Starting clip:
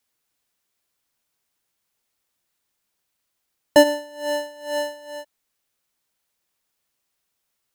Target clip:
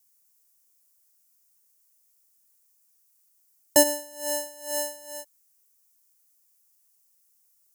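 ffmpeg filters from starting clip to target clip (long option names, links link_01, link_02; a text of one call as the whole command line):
ffmpeg -i in.wav -af "aexciter=amount=7.8:drive=2.5:freq=5200,volume=-7dB" out.wav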